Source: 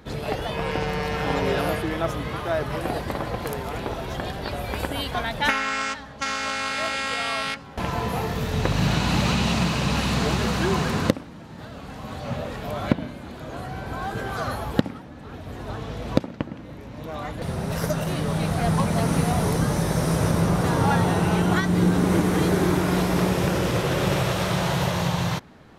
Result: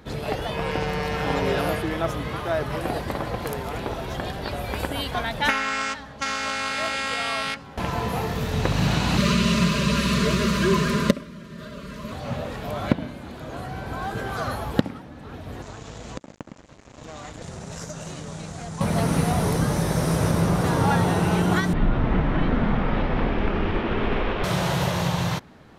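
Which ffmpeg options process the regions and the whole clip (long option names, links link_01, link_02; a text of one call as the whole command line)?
ffmpeg -i in.wav -filter_complex "[0:a]asettb=1/sr,asplit=3[link_01][link_02][link_03];[link_01]atrim=end=9.174[link_04];[link_02]atrim=start=9.17:end=12.12,asetpts=PTS-STARTPTS,afade=type=in:duration=0.004:curve=qsin,afade=type=out:start_time=2.946:duration=0.004:curve=qsin,asuperstop=centerf=800:order=12:qfactor=2.6,aecho=1:1:5:0.66,atrim=end_sample=130095[link_05];[link_03]atrim=start=12.116[link_06];[link_04][link_05]acrossfade=duration=0.004:curve1=hsin:curve2=qsin[link_07];[link_07][link_06]acrossfade=duration=0.004:curve1=qsin:curve2=hsin,asettb=1/sr,asplit=3[link_08][link_09][link_10];[link_08]atrim=end=15.624[link_11];[link_09]atrim=start=15.62:end=18.81,asetpts=PTS-STARTPTS,afade=type=in:duration=0.004:curve=qsin,afade=type=out:start_time=3.186:duration=0.004:curve=qsin,aeval=exprs='sgn(val(0))*max(abs(val(0))-0.0133,0)':channel_layout=same,acompressor=threshold=-33dB:ratio=4:attack=3.2:release=140:knee=1:detection=peak,lowpass=frequency=7100:width_type=q:width=5.1[link_12];[link_10]atrim=start=18.806[link_13];[link_11][link_12]acrossfade=duration=0.004:curve1=hsin:curve2=qsin[link_14];[link_14][link_13]acrossfade=duration=0.004:curve1=qsin:curve2=hsin,asettb=1/sr,asplit=3[link_15][link_16][link_17];[link_15]atrim=end=21.734[link_18];[link_16]atrim=start=21.73:end=24.44,asetpts=PTS-STARTPTS,afade=type=in:duration=0.004:curve=qsin,afade=type=out:start_time=2.706:duration=0.004:curve=qsin,lowpass=frequency=3100:width=0.5412,lowpass=frequency=3100:width=1.3066,afreqshift=-150[link_19];[link_17]atrim=start=24.436[link_20];[link_18][link_19]acrossfade=duration=0.004:curve1=hsin:curve2=qsin[link_21];[link_21][link_20]acrossfade=duration=0.004:curve1=qsin:curve2=hsin" out.wav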